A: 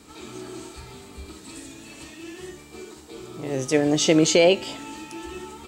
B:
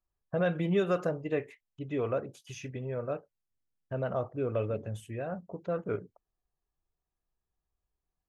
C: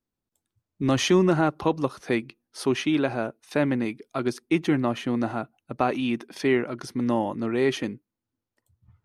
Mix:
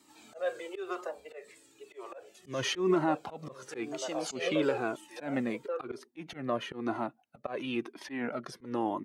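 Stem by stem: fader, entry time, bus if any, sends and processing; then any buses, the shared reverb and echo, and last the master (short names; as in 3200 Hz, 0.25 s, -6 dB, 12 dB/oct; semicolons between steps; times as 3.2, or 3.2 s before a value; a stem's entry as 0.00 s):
-8.0 dB, 0.00 s, no send, high shelf 9700 Hz +6.5 dB; auto duck -7 dB, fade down 1.25 s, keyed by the second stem
+2.0 dB, 0.00 s, no send, steep high-pass 350 Hz 96 dB/oct
+2.5 dB, 1.65 s, no send, high shelf 3400 Hz -8.5 dB; limiter -14 dBFS, peak gain reduction 5.5 dB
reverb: off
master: HPF 210 Hz 12 dB/oct; auto swell 0.159 s; cascading flanger falling 1 Hz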